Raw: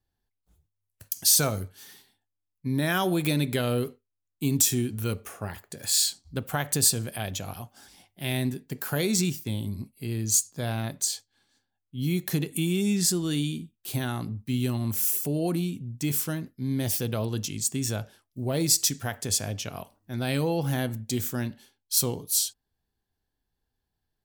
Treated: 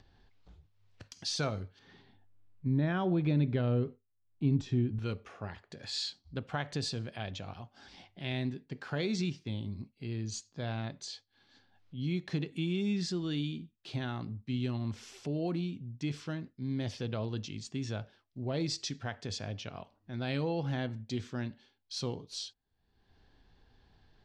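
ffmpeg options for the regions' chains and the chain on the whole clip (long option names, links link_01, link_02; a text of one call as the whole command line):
ffmpeg -i in.wav -filter_complex "[0:a]asettb=1/sr,asplit=3[link_01][link_02][link_03];[link_01]atrim=end=1.794[link_04];[link_02]atrim=start=1.79:end=4.99,asetpts=PTS-STARTPTS,afade=type=in:duration=0.004:curve=qsin,afade=type=out:start_time=3.196:duration=0.004:curve=qsin,lowpass=frequency=1200:poles=1,lowshelf=frequency=170:gain=10[link_05];[link_03]atrim=start=4.986[link_06];[link_04][link_05]acrossfade=duration=0.004:curve1=hsin:curve2=qsin[link_07];[link_07][link_06]acrossfade=duration=0.004:curve1=qsin:curve2=hsin,lowpass=frequency=4700:width=0.5412,lowpass=frequency=4700:width=1.3066,acompressor=mode=upward:threshold=-36dB:ratio=2.5,volume=-6.5dB" out.wav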